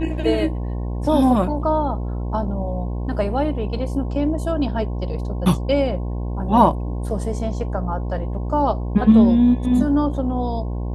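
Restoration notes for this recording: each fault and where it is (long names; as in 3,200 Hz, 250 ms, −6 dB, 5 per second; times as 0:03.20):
mains buzz 60 Hz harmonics 18 −25 dBFS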